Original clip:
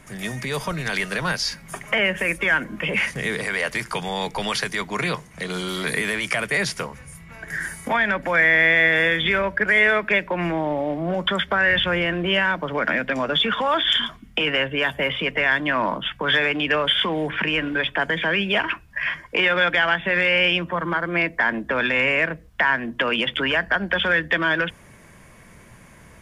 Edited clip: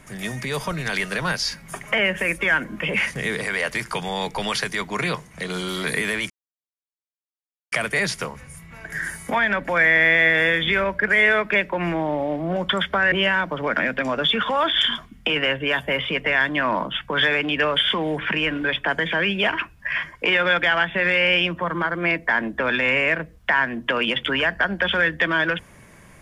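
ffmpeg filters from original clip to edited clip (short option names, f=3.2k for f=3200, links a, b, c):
-filter_complex "[0:a]asplit=3[a][b][c];[a]atrim=end=6.3,asetpts=PTS-STARTPTS,afade=t=out:st=6.296:d=0.004:c=hsin,apad=pad_dur=1.42[d];[b]atrim=start=6.3:end=11.702,asetpts=PTS-STARTPTS,afade=t=in:d=0.004:c=hsin[e];[c]atrim=start=12.228[f];[d][e]concat=n=2:v=0:a=1[g];[g][f]acrossfade=d=0.004:c1=hsin:c2=hsin"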